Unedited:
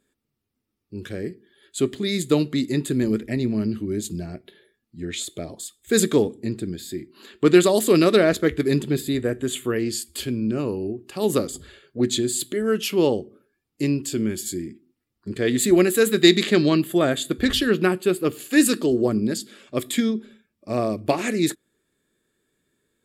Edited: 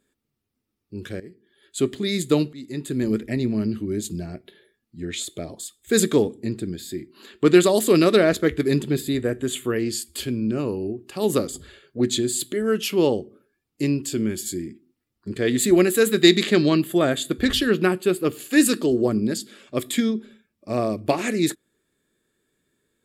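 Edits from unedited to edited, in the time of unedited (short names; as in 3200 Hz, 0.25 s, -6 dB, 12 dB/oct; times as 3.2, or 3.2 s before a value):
1.2–1.79 fade in, from -16 dB
2.53–3.14 fade in, from -21 dB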